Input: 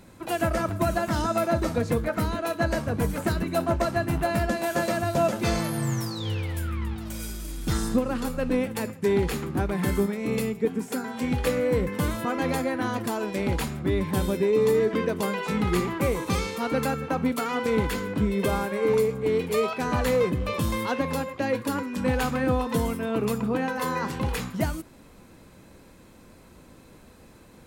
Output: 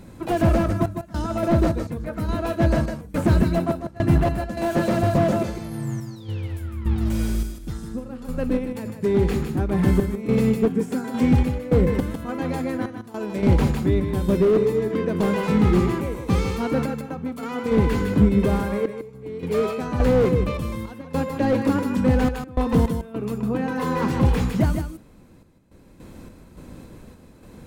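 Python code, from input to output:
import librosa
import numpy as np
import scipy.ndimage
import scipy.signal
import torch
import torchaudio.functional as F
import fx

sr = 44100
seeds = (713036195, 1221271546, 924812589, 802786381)

p1 = fx.low_shelf(x, sr, hz=470.0, db=8.5)
p2 = fx.rider(p1, sr, range_db=10, speed_s=0.5)
p3 = p1 + F.gain(torch.from_numpy(p2), -3.0).numpy()
p4 = fx.tremolo_random(p3, sr, seeds[0], hz=3.5, depth_pct=95)
p5 = p4 + 10.0 ** (-8.5 / 20.0) * np.pad(p4, (int(154 * sr / 1000.0), 0))[:len(p4)]
p6 = fx.slew_limit(p5, sr, full_power_hz=99.0)
y = F.gain(torch.from_numpy(p6), -2.0).numpy()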